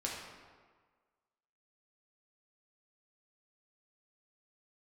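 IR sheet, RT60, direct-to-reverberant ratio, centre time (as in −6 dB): 1.5 s, −3.5 dB, 73 ms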